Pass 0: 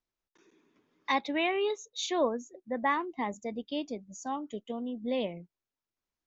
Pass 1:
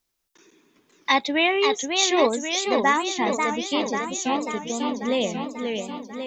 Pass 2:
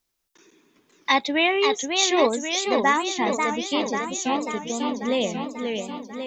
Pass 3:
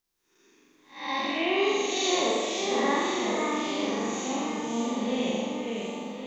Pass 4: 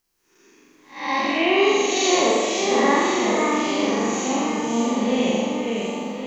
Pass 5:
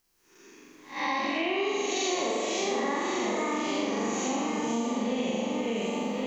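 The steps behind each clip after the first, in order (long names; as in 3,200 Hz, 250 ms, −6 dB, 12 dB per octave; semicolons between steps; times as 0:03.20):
high-shelf EQ 3,700 Hz +11 dB; feedback echo with a swinging delay time 541 ms, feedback 63%, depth 205 cents, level −5 dB; level +7 dB
no processing that can be heard
spectrum smeared in time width 223 ms; on a send: flutter between parallel walls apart 7.4 metres, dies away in 1.3 s; on the sum: level −4.5 dB
notch filter 3,600 Hz, Q 8.7; level +7.5 dB
downward compressor 6 to 1, threshold −28 dBFS, peak gain reduction 13.5 dB; level +1.5 dB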